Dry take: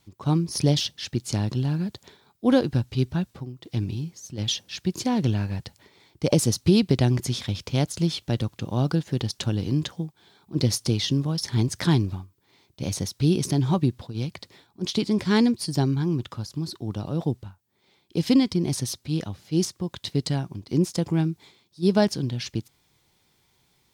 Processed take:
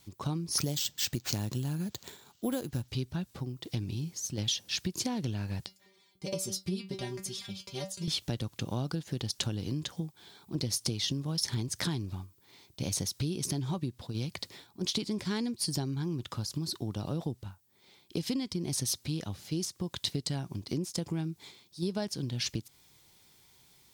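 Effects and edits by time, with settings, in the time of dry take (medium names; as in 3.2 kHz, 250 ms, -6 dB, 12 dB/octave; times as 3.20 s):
0.58–2.88 s: careless resampling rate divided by 4×, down none, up hold
5.66–8.08 s: inharmonic resonator 190 Hz, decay 0.23 s, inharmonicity 0.002
whole clip: compression 6:1, threshold -31 dBFS; treble shelf 4 kHz +8 dB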